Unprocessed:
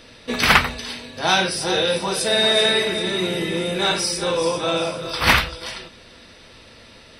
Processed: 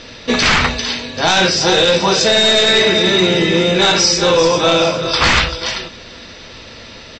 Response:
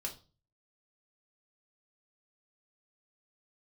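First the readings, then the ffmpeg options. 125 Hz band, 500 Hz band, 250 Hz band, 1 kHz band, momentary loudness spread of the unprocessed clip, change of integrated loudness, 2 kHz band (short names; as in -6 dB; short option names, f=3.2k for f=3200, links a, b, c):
+8.0 dB, +8.0 dB, +8.5 dB, +5.5 dB, 13 LU, +7.0 dB, +5.5 dB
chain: -af "highshelf=f=5.2k:g=3.5,aresample=16000,aeval=exprs='clip(val(0),-1,0.133)':c=same,aresample=44100,alimiter=level_in=11dB:limit=-1dB:release=50:level=0:latency=1,volume=-1dB"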